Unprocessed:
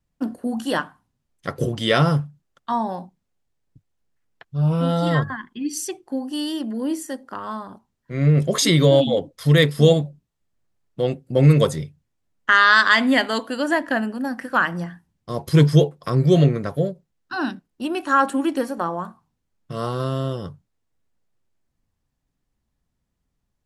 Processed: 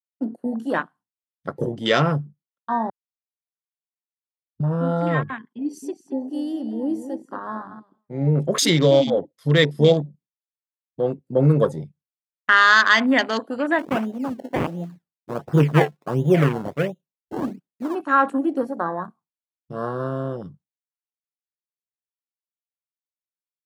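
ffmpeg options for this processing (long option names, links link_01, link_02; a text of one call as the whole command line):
ffmpeg -i in.wav -filter_complex "[0:a]asettb=1/sr,asplit=3[link_01][link_02][link_03];[link_01]atrim=end=5.604[link_04];[link_02]atrim=start=5.6:end=8.28,asetpts=PTS-STARTPTS,afade=type=in:duration=0.004:curve=qsin,afade=type=out:start_time=2.676:duration=0.004:curve=qsin,asplit=2[link_05][link_06];[link_06]adelay=221,lowpass=frequency=4000:poles=1,volume=-9dB,asplit=2[link_07][link_08];[link_08]adelay=221,lowpass=frequency=4000:poles=1,volume=0.17,asplit=2[link_09][link_10];[link_10]adelay=221,lowpass=frequency=4000:poles=1,volume=0.17[link_11];[link_05][link_07][link_09][link_11]amix=inputs=4:normalize=0,atrim=end_sample=118188[link_12];[link_03]atrim=start=8.276[link_13];[link_04][link_12]acrossfade=duration=0.004:curve1=hsin:curve2=qsin[link_14];[link_14][link_13]acrossfade=duration=0.004:curve1=qsin:curve2=hsin,asplit=3[link_15][link_16][link_17];[link_15]afade=type=out:start_time=13.78:duration=0.02[link_18];[link_16]acrusher=samples=25:mix=1:aa=0.000001:lfo=1:lforange=25:lforate=1.4,afade=type=in:start_time=13.78:duration=0.02,afade=type=out:start_time=17.94:duration=0.02[link_19];[link_17]afade=type=in:start_time=17.94:duration=0.02[link_20];[link_18][link_19][link_20]amix=inputs=3:normalize=0,asplit=3[link_21][link_22][link_23];[link_21]atrim=end=2.9,asetpts=PTS-STARTPTS,afade=type=out:start_time=2.896:duration=0.004:curve=hsin[link_24];[link_22]atrim=start=2.9:end=4.6,asetpts=PTS-STARTPTS,volume=0[link_25];[link_23]atrim=start=4.6,asetpts=PTS-STARTPTS,afade=type=in:duration=0.004:curve=hsin[link_26];[link_24][link_25][link_26]concat=n=3:v=0:a=1,agate=range=-33dB:threshold=-45dB:ratio=3:detection=peak,afwtdn=0.0355,highpass=160" out.wav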